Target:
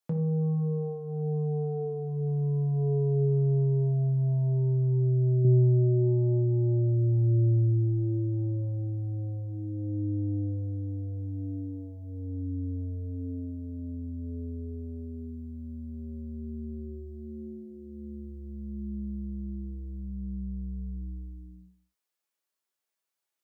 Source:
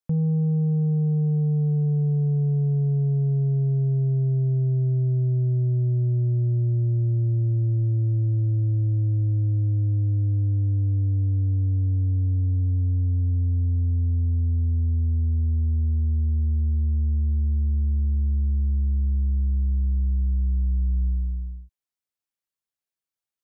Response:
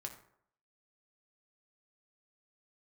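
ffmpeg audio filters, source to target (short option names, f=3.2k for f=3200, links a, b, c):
-filter_complex "[1:a]atrim=start_sample=2205,afade=t=out:st=0.33:d=0.01,atrim=end_sample=14994[a];[0:a][a]afir=irnorm=-1:irlink=0,asettb=1/sr,asplit=3[b][c][d];[b]atrim=end=3.244[e];[c]atrim=start=3.24:end=5.45,asetpts=PTS-STARTPTS,afade=t=in:d=0.004:c=qsin,afade=t=out:st=2.206:d=0.004:c=qsin,acompressor=threshold=-18dB:ratio=6[f];[d]atrim=start=5.446[g];[e][f]acrossfade=d=0.004:c1=hsin:c2=qsin[h];[h][g]acrossfade=d=0.004:c1=qsin:c2=hsin,highpass=260,volume=8dB"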